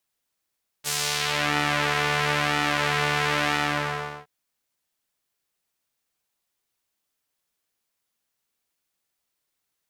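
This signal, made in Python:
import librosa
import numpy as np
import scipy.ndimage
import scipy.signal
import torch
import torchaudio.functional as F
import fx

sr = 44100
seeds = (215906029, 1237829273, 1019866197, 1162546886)

y = fx.sub_patch_pwm(sr, seeds[0], note=50, wave2='saw', interval_st=0, detune_cents=16, level2_db=-9.0, sub_db=-9, noise_db=-15.0, kind='bandpass', cutoff_hz=1100.0, q=0.92, env_oct=3.0, env_decay_s=0.65, env_sustain_pct=30, attack_ms=34.0, decay_s=0.41, sustain_db=-3.0, release_s=0.7, note_s=2.72, lfo_hz=1.0, width_pct=41, width_swing_pct=14)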